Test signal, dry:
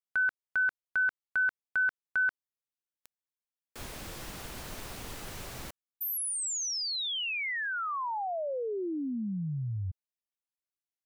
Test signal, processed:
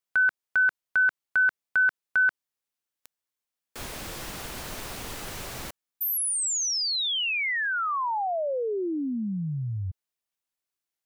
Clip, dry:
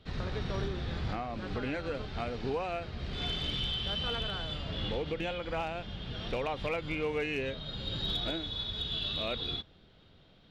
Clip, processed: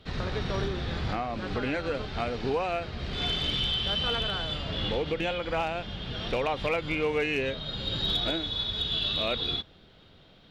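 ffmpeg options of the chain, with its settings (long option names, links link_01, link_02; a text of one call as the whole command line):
ffmpeg -i in.wav -af "lowshelf=frequency=250:gain=-3.5,volume=6dB" out.wav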